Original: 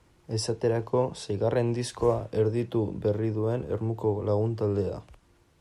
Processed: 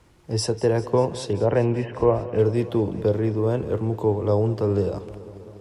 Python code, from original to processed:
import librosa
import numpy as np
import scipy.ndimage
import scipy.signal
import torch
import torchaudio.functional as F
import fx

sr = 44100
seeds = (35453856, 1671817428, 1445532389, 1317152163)

y = fx.brickwall_lowpass(x, sr, high_hz=3100.0, at=(1.33, 2.39))
y = fx.echo_warbled(y, sr, ms=197, feedback_pct=77, rate_hz=2.8, cents=67, wet_db=-18.0)
y = F.gain(torch.from_numpy(y), 5.0).numpy()